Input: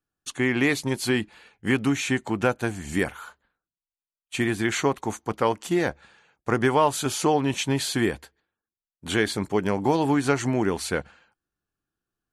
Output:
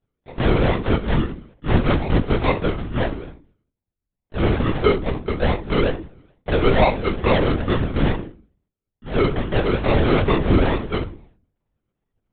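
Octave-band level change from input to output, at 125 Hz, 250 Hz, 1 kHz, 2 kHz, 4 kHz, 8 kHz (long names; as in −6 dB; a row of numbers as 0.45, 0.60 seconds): +9.0 dB, +2.5 dB, +2.5 dB, +0.5 dB, +1.0 dB, below −40 dB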